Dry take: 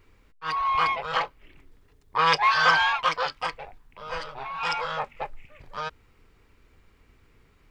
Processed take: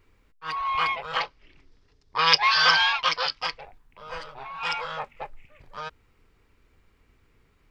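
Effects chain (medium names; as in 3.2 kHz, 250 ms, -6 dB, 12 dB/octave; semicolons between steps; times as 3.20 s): 1.20–3.61 s: resonant low-pass 5.2 kHz, resonance Q 3.5; dynamic bell 2.9 kHz, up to +6 dB, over -34 dBFS, Q 0.9; trim -3.5 dB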